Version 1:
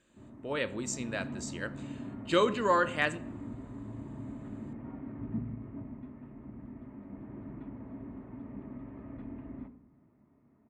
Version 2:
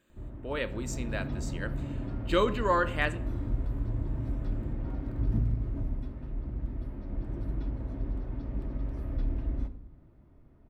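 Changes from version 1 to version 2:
speech: remove resonant low-pass 7.7 kHz, resonance Q 1.7; background: remove cabinet simulation 200–2200 Hz, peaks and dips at 230 Hz +4 dB, 340 Hz -6 dB, 520 Hz -8 dB, 750 Hz -4 dB, 1.5 kHz -7 dB

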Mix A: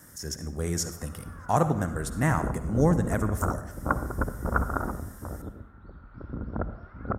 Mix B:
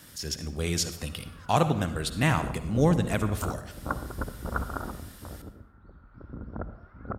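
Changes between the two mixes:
speech: add high-order bell 3.3 kHz +15.5 dB 1.2 oct; background -5.0 dB

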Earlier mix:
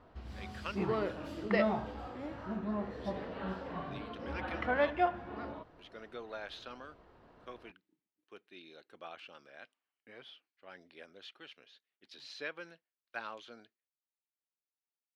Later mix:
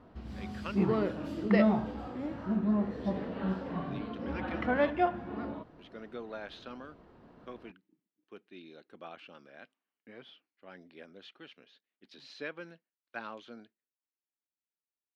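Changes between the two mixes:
speech: add treble shelf 5.5 kHz -7.5 dB; master: add peaking EQ 210 Hz +9 dB 1.6 oct

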